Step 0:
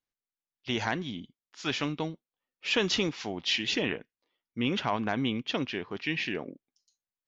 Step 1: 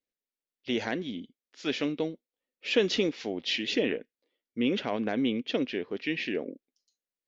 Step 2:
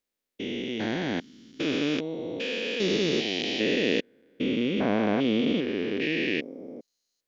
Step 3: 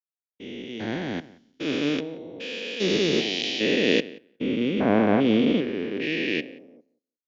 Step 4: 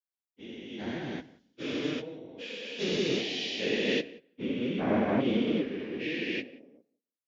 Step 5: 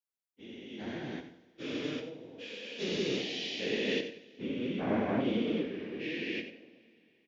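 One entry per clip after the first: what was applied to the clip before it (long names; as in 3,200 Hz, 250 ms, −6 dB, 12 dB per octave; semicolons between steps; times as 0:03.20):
graphic EQ with 10 bands 125 Hz −4 dB, 250 Hz +8 dB, 500 Hz +12 dB, 1,000 Hz −6 dB, 2,000 Hz +5 dB, 4,000 Hz +4 dB; level −6.5 dB
spectrum averaged block by block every 400 ms; level +8.5 dB
feedback echo with a low-pass in the loop 179 ms, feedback 21%, low-pass 3,100 Hz, level −15 dB; multiband upward and downward expander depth 100%; level +2.5 dB
random phases in long frames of 50 ms; level −6.5 dB
single-tap delay 89 ms −11.5 dB; convolution reverb, pre-delay 23 ms, DRR 12 dB; level −4 dB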